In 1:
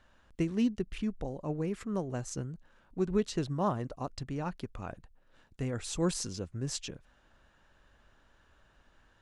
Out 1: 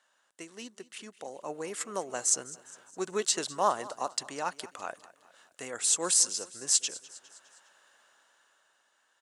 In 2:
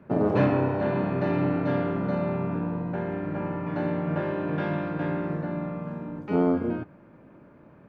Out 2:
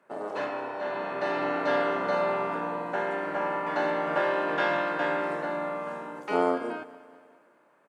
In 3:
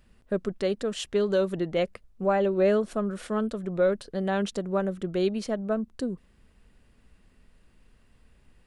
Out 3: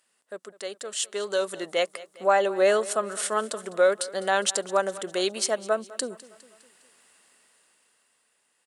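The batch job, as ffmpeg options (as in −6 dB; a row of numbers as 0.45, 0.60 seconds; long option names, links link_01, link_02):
-af "highpass=640,equalizer=frequency=8500:width_type=o:width=1.1:gain=13.5,bandreject=frequency=2400:width=17,dynaudnorm=framelen=150:gausssize=17:maxgain=12dB,aecho=1:1:204|408|612|816:0.112|0.0595|0.0315|0.0167,volume=-4dB"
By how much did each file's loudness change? +5.5, −1.5, +2.0 LU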